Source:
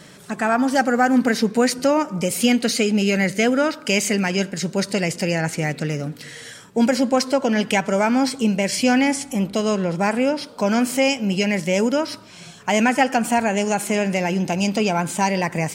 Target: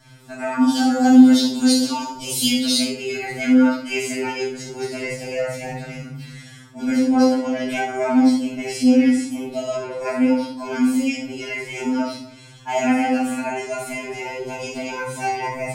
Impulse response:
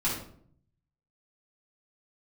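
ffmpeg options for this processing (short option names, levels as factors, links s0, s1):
-filter_complex "[0:a]asettb=1/sr,asplit=3[s0][s1][s2];[s0]atrim=end=0.624[s3];[s1]atrim=start=0.62:end=2.77,asetpts=PTS-STARTPTS,afade=t=in:d=0.004:c=qsin,afade=t=out:st=2.146:d=0.004:c=qsin,highshelf=f=2700:t=q:w=3:g=8.5[s4];[s2]atrim=start=2.766[s5];[s3][s4]acrossfade=d=0.004:c1=hsin:c2=qsin[s6];[s6][s5]acrossfade=d=0.004:c1=qsin:c2=hsin[s7];[1:a]atrim=start_sample=2205,asetrate=40131,aresample=44100[s8];[s7][s8]afir=irnorm=-1:irlink=0,afftfilt=real='re*2.45*eq(mod(b,6),0)':imag='im*2.45*eq(mod(b,6),0)':win_size=2048:overlap=0.75,volume=0.282"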